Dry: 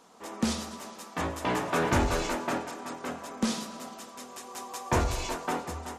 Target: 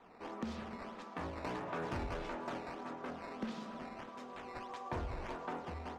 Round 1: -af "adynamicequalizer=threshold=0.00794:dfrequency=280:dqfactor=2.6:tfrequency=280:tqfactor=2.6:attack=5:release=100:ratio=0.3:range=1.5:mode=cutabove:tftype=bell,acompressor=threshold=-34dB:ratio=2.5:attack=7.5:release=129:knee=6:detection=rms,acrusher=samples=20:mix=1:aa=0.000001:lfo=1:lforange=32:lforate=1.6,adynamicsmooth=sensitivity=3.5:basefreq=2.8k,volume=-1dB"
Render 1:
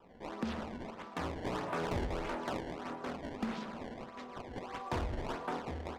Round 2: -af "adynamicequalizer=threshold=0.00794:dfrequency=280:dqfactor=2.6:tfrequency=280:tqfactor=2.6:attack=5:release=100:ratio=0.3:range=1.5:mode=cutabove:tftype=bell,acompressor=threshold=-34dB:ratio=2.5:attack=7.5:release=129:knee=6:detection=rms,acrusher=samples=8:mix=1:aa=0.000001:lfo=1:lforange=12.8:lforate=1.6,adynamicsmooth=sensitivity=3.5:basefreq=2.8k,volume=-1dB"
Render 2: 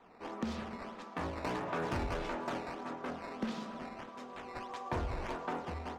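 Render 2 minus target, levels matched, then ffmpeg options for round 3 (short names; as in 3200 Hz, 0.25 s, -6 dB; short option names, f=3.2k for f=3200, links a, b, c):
compressor: peak gain reduction -4 dB
-af "adynamicequalizer=threshold=0.00794:dfrequency=280:dqfactor=2.6:tfrequency=280:tqfactor=2.6:attack=5:release=100:ratio=0.3:range=1.5:mode=cutabove:tftype=bell,acompressor=threshold=-40.5dB:ratio=2.5:attack=7.5:release=129:knee=6:detection=rms,acrusher=samples=8:mix=1:aa=0.000001:lfo=1:lforange=12.8:lforate=1.6,adynamicsmooth=sensitivity=3.5:basefreq=2.8k,volume=-1dB"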